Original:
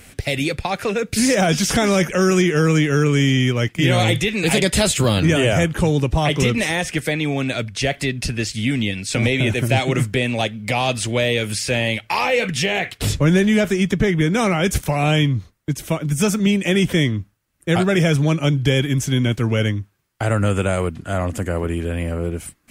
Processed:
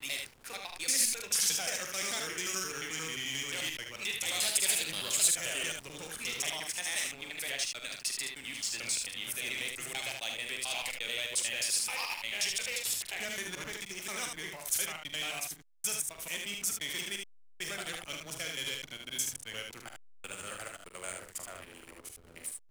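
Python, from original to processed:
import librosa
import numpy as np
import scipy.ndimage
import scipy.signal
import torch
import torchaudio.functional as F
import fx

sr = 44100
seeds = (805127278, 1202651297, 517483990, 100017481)

p1 = fx.block_reorder(x, sr, ms=88.0, group=5)
p2 = fx.clip_asym(p1, sr, top_db=-11.5, bottom_db=-9.0)
p3 = np.diff(p2, prepend=0.0)
p4 = fx.backlash(p3, sr, play_db=-35.5)
p5 = p4 + fx.room_early_taps(p4, sr, ms=(44, 75), db=(-8.5, -4.5), dry=0)
y = F.gain(torch.from_numpy(p5), -4.0).numpy()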